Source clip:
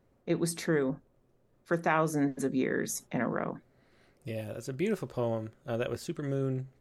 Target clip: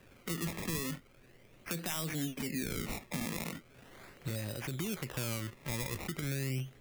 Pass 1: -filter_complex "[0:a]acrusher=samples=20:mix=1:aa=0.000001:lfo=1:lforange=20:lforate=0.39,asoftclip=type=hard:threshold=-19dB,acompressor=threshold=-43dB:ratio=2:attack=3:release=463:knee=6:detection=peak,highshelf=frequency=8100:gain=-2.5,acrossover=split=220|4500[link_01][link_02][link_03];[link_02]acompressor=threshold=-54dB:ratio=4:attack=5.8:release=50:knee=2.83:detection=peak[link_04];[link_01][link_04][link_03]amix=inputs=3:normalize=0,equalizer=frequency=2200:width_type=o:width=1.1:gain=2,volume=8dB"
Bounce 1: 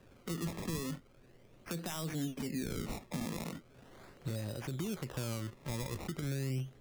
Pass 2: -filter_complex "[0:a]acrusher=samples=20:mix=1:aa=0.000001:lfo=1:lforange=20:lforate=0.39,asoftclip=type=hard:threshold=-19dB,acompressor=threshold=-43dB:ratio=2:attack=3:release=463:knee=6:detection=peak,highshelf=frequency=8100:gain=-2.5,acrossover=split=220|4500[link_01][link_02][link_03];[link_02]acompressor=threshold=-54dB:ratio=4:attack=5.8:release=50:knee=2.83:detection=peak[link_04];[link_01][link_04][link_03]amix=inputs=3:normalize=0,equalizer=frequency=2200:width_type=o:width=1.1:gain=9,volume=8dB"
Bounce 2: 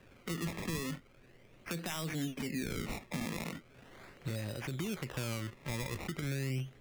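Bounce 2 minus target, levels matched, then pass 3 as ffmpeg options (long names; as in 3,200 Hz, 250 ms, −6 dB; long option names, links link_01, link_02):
8,000 Hz band −3.0 dB
-filter_complex "[0:a]acrusher=samples=20:mix=1:aa=0.000001:lfo=1:lforange=20:lforate=0.39,asoftclip=type=hard:threshold=-19dB,acompressor=threshold=-43dB:ratio=2:attack=3:release=463:knee=6:detection=peak,highshelf=frequency=8100:gain=6.5,acrossover=split=220|4500[link_01][link_02][link_03];[link_02]acompressor=threshold=-54dB:ratio=4:attack=5.8:release=50:knee=2.83:detection=peak[link_04];[link_01][link_04][link_03]amix=inputs=3:normalize=0,equalizer=frequency=2200:width_type=o:width=1.1:gain=9,volume=8dB"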